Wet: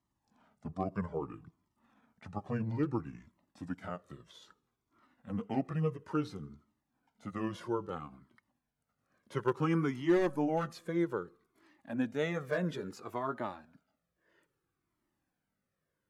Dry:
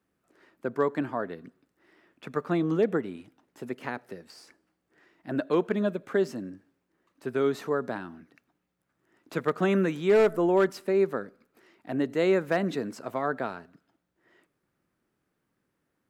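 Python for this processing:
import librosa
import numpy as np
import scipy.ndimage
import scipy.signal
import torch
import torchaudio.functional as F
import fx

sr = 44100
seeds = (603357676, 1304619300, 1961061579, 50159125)

y = fx.pitch_glide(x, sr, semitones=-7.5, runs='ending unshifted')
y = fx.comb_cascade(y, sr, direction='falling', hz=0.6)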